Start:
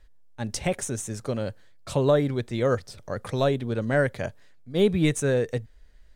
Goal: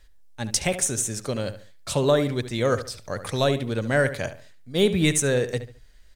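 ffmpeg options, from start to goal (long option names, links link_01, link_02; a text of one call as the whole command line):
ffmpeg -i in.wav -filter_complex "[0:a]highshelf=frequency=2300:gain=10,asplit=2[link_01][link_02];[link_02]adelay=71,lowpass=frequency=3500:poles=1,volume=-11.5dB,asplit=2[link_03][link_04];[link_04]adelay=71,lowpass=frequency=3500:poles=1,volume=0.33,asplit=2[link_05][link_06];[link_06]adelay=71,lowpass=frequency=3500:poles=1,volume=0.33[link_07];[link_03][link_05][link_07]amix=inputs=3:normalize=0[link_08];[link_01][link_08]amix=inputs=2:normalize=0" out.wav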